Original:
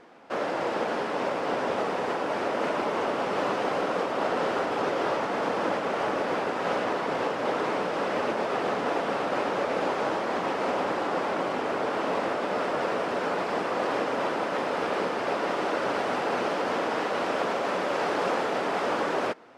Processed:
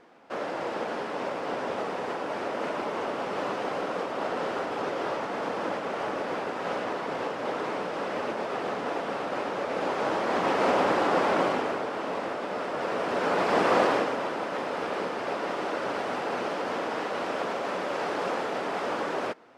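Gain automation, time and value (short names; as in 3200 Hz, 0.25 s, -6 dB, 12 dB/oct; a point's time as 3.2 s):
9.61 s -3.5 dB
10.62 s +4 dB
11.44 s +4 dB
11.88 s -4 dB
12.7 s -4 dB
13.75 s +7 dB
14.22 s -3 dB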